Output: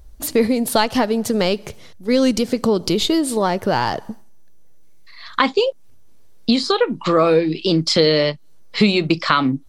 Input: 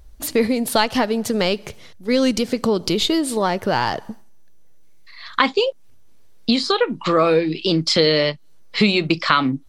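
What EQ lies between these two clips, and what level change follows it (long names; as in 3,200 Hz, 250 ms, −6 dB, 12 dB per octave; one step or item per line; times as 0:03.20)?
parametric band 2,400 Hz −3.5 dB 2.1 octaves
+2.0 dB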